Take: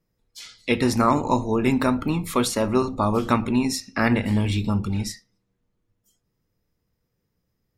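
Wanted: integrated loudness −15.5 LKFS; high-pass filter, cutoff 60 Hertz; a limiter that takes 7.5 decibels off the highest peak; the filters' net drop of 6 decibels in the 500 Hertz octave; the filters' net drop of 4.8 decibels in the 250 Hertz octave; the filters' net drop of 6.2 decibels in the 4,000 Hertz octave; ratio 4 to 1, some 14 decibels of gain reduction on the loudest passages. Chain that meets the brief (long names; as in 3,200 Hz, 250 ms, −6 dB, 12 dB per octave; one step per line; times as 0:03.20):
high-pass filter 60 Hz
parametric band 250 Hz −4 dB
parametric band 500 Hz −6.5 dB
parametric band 4,000 Hz −8.5 dB
downward compressor 4 to 1, threshold −35 dBFS
level +23.5 dB
brickwall limiter −5 dBFS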